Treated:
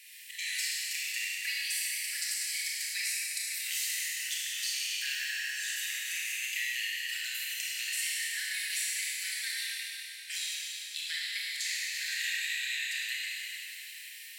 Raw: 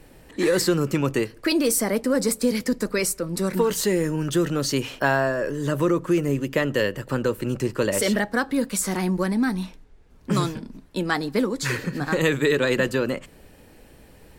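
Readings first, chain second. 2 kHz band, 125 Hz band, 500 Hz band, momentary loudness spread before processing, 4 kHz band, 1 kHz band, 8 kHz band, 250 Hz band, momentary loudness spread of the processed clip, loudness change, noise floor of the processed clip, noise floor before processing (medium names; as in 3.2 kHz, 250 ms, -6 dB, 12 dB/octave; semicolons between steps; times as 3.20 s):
-4.5 dB, under -40 dB, under -40 dB, 6 LU, +0.5 dB, under -35 dB, -2.5 dB, under -40 dB, 6 LU, -9.0 dB, -46 dBFS, -50 dBFS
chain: steep high-pass 1.9 kHz 72 dB/octave; compression 6:1, threshold -43 dBFS, peak gain reduction 21.5 dB; Schroeder reverb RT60 3.3 s, combs from 25 ms, DRR -6 dB; trim +5.5 dB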